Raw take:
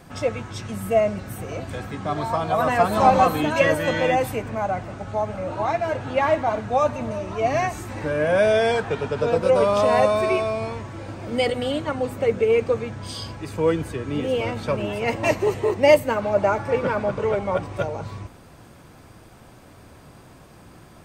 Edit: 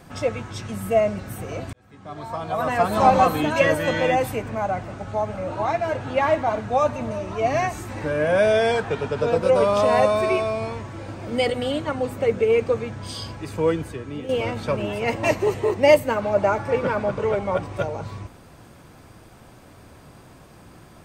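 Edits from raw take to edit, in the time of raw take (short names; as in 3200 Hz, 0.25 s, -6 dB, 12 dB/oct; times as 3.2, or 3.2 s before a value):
1.73–3.03 fade in
13.61–14.29 fade out, to -9 dB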